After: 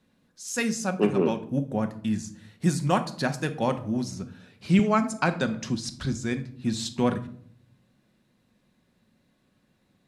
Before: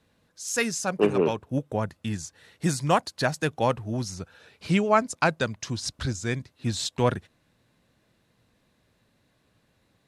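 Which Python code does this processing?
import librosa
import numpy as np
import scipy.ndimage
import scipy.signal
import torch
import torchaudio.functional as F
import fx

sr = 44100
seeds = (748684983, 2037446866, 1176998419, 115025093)

y = fx.peak_eq(x, sr, hz=230.0, db=8.0, octaves=0.66)
y = fx.room_shoebox(y, sr, seeds[0], volume_m3=830.0, walls='furnished', distance_m=1.0)
y = fx.band_squash(y, sr, depth_pct=40, at=(4.79, 5.75))
y = y * 10.0 ** (-3.5 / 20.0)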